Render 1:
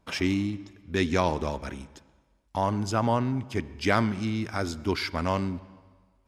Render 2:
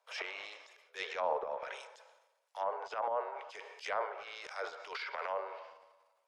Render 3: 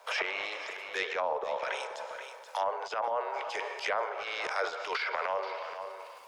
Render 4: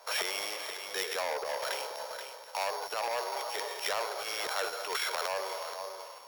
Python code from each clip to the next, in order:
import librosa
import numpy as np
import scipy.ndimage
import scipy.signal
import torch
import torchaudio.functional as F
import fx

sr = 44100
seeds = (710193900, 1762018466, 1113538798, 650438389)

y1 = scipy.signal.sosfilt(scipy.signal.butter(12, 460.0, 'highpass', fs=sr, output='sos'), x)
y1 = fx.transient(y1, sr, attack_db=-11, sustain_db=9)
y1 = fx.env_lowpass_down(y1, sr, base_hz=960.0, full_db=-27.0)
y1 = y1 * 10.0 ** (-4.5 / 20.0)
y2 = fx.rider(y1, sr, range_db=3, speed_s=0.5)
y2 = y2 + 10.0 ** (-17.0 / 20.0) * np.pad(y2, (int(480 * sr / 1000.0), 0))[:len(y2)]
y2 = fx.band_squash(y2, sr, depth_pct=70)
y2 = y2 * 10.0 ** (6.0 / 20.0)
y3 = np.r_[np.sort(y2[:len(y2) // 8 * 8].reshape(-1, 8), axis=1).ravel(), y2[len(y2) // 8 * 8:]]
y3 = fx.transformer_sat(y3, sr, knee_hz=2700.0)
y3 = y3 * 10.0 ** (1.0 / 20.0)